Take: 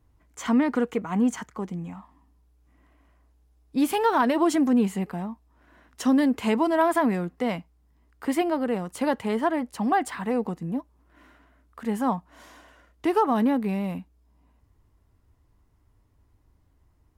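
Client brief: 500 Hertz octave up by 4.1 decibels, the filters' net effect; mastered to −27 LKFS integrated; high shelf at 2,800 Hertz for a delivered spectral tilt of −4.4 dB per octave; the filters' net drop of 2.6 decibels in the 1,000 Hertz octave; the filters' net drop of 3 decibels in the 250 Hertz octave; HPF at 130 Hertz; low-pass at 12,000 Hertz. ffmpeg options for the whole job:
ffmpeg -i in.wav -af "highpass=130,lowpass=12000,equalizer=frequency=250:width_type=o:gain=-5.5,equalizer=frequency=500:width_type=o:gain=8.5,equalizer=frequency=1000:width_type=o:gain=-7,highshelf=frequency=2800:gain=4.5,volume=-1.5dB" out.wav

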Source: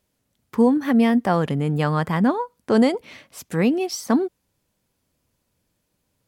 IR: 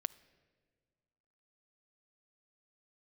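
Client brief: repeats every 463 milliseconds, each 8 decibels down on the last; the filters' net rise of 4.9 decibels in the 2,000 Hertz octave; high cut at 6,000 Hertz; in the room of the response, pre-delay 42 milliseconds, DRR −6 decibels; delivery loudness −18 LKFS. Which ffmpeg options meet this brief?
-filter_complex "[0:a]lowpass=6000,equalizer=frequency=2000:width_type=o:gain=6,aecho=1:1:463|926|1389|1852|2315:0.398|0.159|0.0637|0.0255|0.0102,asplit=2[link_01][link_02];[1:a]atrim=start_sample=2205,adelay=42[link_03];[link_02][link_03]afir=irnorm=-1:irlink=0,volume=7dB[link_04];[link_01][link_04]amix=inputs=2:normalize=0,volume=-4.5dB"

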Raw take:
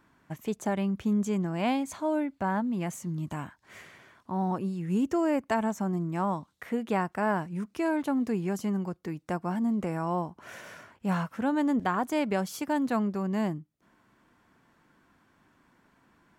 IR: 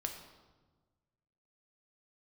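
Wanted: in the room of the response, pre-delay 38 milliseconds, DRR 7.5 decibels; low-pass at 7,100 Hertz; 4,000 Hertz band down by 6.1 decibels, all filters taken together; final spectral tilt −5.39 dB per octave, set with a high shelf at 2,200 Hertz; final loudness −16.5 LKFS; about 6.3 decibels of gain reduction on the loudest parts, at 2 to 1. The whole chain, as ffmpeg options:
-filter_complex "[0:a]lowpass=7100,highshelf=frequency=2200:gain=-3.5,equalizer=frequency=4000:width_type=o:gain=-5,acompressor=threshold=-35dB:ratio=2,asplit=2[link_01][link_02];[1:a]atrim=start_sample=2205,adelay=38[link_03];[link_02][link_03]afir=irnorm=-1:irlink=0,volume=-7.5dB[link_04];[link_01][link_04]amix=inputs=2:normalize=0,volume=18.5dB"

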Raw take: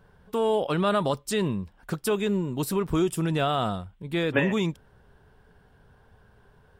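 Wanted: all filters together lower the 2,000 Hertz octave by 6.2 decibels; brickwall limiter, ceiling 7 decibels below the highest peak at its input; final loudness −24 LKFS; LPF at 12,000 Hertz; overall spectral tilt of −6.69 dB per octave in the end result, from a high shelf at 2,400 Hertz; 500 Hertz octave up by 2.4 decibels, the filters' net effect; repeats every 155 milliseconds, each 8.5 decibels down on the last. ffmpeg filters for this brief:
ffmpeg -i in.wav -af "lowpass=12000,equalizer=frequency=500:width_type=o:gain=3.5,equalizer=frequency=2000:width_type=o:gain=-6.5,highshelf=frequency=2400:gain=-4,alimiter=limit=-17dB:level=0:latency=1,aecho=1:1:155|310|465|620:0.376|0.143|0.0543|0.0206,volume=3dB" out.wav

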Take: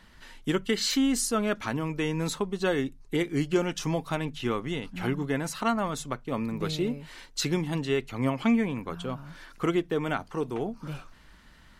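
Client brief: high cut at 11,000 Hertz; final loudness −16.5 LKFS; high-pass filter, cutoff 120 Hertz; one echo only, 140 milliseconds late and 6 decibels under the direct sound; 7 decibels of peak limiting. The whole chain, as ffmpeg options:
ffmpeg -i in.wav -af "highpass=120,lowpass=11000,alimiter=limit=-19dB:level=0:latency=1,aecho=1:1:140:0.501,volume=13.5dB" out.wav

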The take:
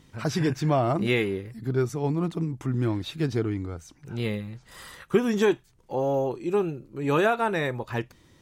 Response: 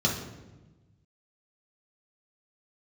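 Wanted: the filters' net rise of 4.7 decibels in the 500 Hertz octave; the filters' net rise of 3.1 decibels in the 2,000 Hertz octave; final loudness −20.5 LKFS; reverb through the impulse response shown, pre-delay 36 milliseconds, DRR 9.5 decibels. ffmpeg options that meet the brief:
-filter_complex "[0:a]equalizer=frequency=500:width_type=o:gain=6,equalizer=frequency=2000:width_type=o:gain=3.5,asplit=2[link_01][link_02];[1:a]atrim=start_sample=2205,adelay=36[link_03];[link_02][link_03]afir=irnorm=-1:irlink=0,volume=-20.5dB[link_04];[link_01][link_04]amix=inputs=2:normalize=0,volume=2dB"

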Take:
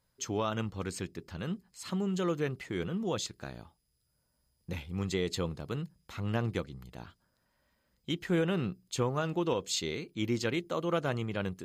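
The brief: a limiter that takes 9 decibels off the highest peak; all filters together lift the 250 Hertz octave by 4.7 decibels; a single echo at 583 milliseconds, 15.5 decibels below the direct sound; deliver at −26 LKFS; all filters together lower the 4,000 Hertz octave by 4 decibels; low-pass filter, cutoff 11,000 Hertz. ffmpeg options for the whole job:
ffmpeg -i in.wav -af "lowpass=11000,equalizer=frequency=250:width_type=o:gain=7,equalizer=frequency=4000:width_type=o:gain=-5,alimiter=limit=-24dB:level=0:latency=1,aecho=1:1:583:0.168,volume=9dB" out.wav

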